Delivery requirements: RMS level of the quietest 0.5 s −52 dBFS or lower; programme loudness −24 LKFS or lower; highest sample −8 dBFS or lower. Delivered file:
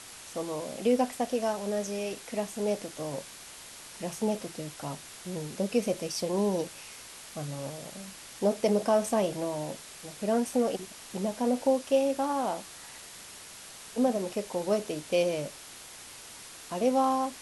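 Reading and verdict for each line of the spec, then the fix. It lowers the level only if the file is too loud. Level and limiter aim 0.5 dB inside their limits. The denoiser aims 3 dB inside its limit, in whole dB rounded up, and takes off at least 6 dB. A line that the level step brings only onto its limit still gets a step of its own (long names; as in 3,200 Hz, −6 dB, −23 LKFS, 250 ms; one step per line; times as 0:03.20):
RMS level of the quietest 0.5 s −47 dBFS: out of spec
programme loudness −30.5 LKFS: in spec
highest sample −14.0 dBFS: in spec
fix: broadband denoise 8 dB, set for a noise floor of −47 dBFS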